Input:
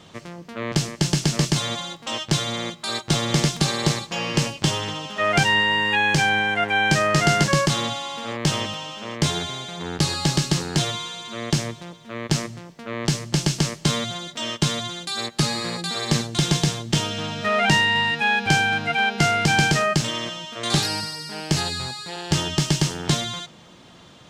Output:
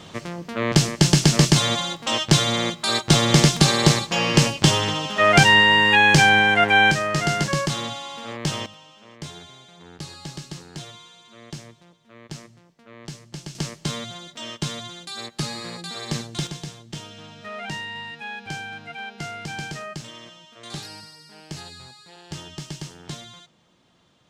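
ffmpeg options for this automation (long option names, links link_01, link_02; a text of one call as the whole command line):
ffmpeg -i in.wav -af "asetnsamples=nb_out_samples=441:pad=0,asendcmd='6.91 volume volume -4dB;8.66 volume volume -15dB;13.55 volume volume -6.5dB;16.47 volume volume -14dB',volume=5dB" out.wav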